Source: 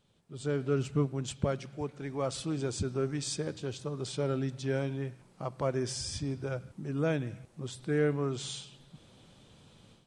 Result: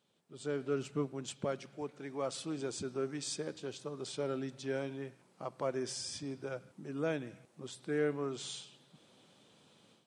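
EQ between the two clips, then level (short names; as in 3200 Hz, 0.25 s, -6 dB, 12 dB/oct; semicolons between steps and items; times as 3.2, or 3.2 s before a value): HPF 220 Hz 12 dB/oct; -3.5 dB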